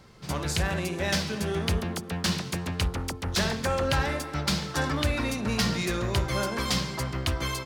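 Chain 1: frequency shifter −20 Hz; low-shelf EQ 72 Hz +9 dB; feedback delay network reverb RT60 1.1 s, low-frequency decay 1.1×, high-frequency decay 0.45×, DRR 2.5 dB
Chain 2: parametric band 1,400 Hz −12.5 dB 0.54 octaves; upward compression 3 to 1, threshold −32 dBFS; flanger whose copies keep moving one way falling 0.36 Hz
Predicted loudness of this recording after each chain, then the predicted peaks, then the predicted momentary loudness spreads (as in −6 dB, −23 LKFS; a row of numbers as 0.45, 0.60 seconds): −25.0, −33.0 LKFS; −7.5, −17.5 dBFS; 3, 3 LU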